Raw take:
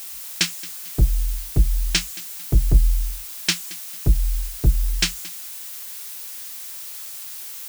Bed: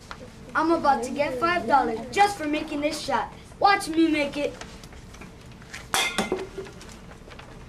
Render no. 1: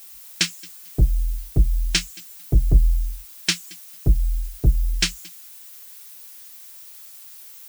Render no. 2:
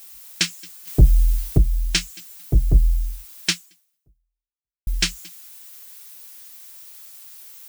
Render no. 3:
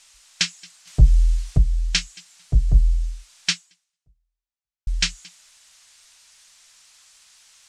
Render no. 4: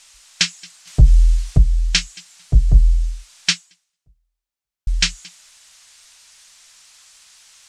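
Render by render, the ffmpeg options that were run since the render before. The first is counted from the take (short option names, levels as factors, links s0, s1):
-af "afftdn=nr=10:nf=-35"
-filter_complex "[0:a]asettb=1/sr,asplit=3[s0][s1][s2];[s0]atrim=end=0.874[s3];[s1]atrim=start=0.87:end=1.58,asetpts=PTS-STARTPTS,afade=t=in:d=0.004:c=qsin,afade=t=out:st=0.706:d=0.004:c=qsin,acontrast=71[s4];[s2]atrim=start=1.576[s5];[s3][s4]acrossfade=d=0.004:c1=hsin:c2=qsin[s6];[s6][s5]acrossfade=d=0.004:c1=qsin:c2=hsin,asplit=2[s7][s8];[s7]atrim=end=4.87,asetpts=PTS-STARTPTS,afade=t=out:st=3.51:d=1.36:c=exp[s9];[s8]atrim=start=4.87,asetpts=PTS-STARTPTS,afade=t=in:d=0.004:c=hsin[s10];[s9][s10]concat=n=2:v=0:a=1"
-af "lowpass=f=7800:w=0.5412,lowpass=f=7800:w=1.3066,equalizer=f=340:t=o:w=1.2:g=-13.5"
-af "volume=1.68,alimiter=limit=0.794:level=0:latency=1"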